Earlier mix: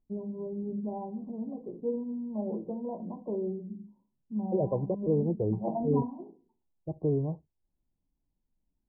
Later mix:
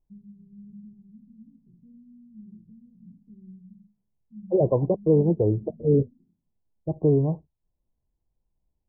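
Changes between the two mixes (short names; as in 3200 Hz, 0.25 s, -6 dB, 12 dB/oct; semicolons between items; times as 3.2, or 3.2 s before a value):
first voice: add inverse Chebyshev low-pass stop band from 550 Hz, stop band 60 dB; second voice +8.0 dB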